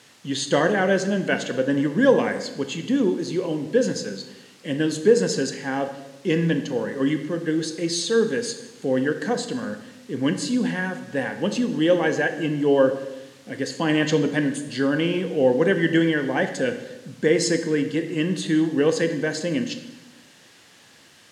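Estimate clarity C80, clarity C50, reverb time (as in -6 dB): 12.0 dB, 10.0 dB, 1.0 s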